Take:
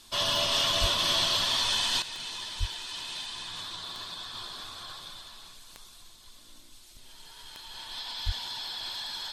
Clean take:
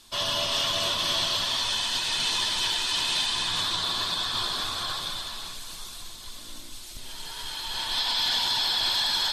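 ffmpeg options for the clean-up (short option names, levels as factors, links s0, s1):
-filter_complex "[0:a]adeclick=t=4,asplit=3[s0][s1][s2];[s0]afade=t=out:st=0.8:d=0.02[s3];[s1]highpass=f=140:w=0.5412,highpass=f=140:w=1.3066,afade=t=in:st=0.8:d=0.02,afade=t=out:st=0.92:d=0.02[s4];[s2]afade=t=in:st=0.92:d=0.02[s5];[s3][s4][s5]amix=inputs=3:normalize=0,asplit=3[s6][s7][s8];[s6]afade=t=out:st=2.59:d=0.02[s9];[s7]highpass=f=140:w=0.5412,highpass=f=140:w=1.3066,afade=t=in:st=2.59:d=0.02,afade=t=out:st=2.71:d=0.02[s10];[s8]afade=t=in:st=2.71:d=0.02[s11];[s9][s10][s11]amix=inputs=3:normalize=0,asplit=3[s12][s13][s14];[s12]afade=t=out:st=8.25:d=0.02[s15];[s13]highpass=f=140:w=0.5412,highpass=f=140:w=1.3066,afade=t=in:st=8.25:d=0.02,afade=t=out:st=8.37:d=0.02[s16];[s14]afade=t=in:st=8.37:d=0.02[s17];[s15][s16][s17]amix=inputs=3:normalize=0,asetnsamples=n=441:p=0,asendcmd='2.02 volume volume 11.5dB',volume=1"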